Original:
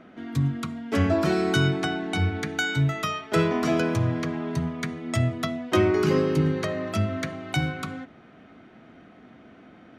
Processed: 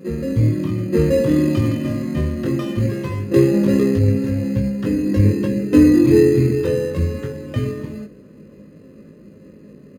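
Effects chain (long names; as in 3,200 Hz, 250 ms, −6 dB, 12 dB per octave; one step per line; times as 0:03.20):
low-pass filter 4,900 Hz 12 dB per octave
low shelf with overshoot 730 Hz +9 dB, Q 3
in parallel at −8.5 dB: decimation without filtering 16×
on the sum: pitch shifter −3.5 semitones
on a send: backwards echo 879 ms −9 dB
on the sum: chorus effect 0.22 Hz, delay 19 ms, depth 2.3 ms
level −2.5 dB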